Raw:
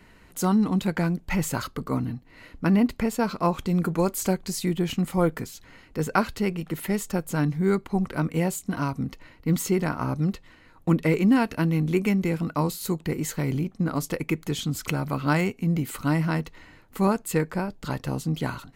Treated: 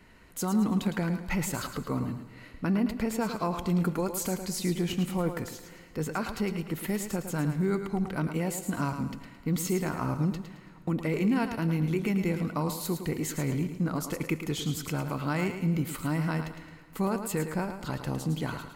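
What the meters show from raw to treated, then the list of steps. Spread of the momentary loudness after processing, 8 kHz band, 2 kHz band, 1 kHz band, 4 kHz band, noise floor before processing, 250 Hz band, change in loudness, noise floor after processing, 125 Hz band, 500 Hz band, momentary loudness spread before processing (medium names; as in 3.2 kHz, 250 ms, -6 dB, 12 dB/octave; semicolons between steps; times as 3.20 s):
8 LU, -2.5 dB, -5.0 dB, -5.5 dB, -3.0 dB, -54 dBFS, -4.5 dB, -4.5 dB, -51 dBFS, -4.0 dB, -5.0 dB, 9 LU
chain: peak limiter -16.5 dBFS, peak gain reduction 9.5 dB; on a send: thinning echo 109 ms, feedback 36%, high-pass 170 Hz, level -8 dB; on the sum: plate-style reverb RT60 2.6 s, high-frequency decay 0.8×, DRR 16.5 dB; trim -3 dB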